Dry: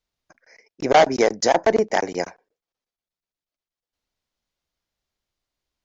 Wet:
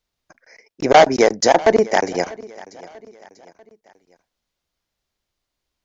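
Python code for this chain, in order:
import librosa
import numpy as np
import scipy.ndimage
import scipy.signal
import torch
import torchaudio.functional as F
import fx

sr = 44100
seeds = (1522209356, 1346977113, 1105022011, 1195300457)

y = fx.echo_feedback(x, sr, ms=642, feedback_pct=44, wet_db=-21.0)
y = y * librosa.db_to_amplitude(4.0)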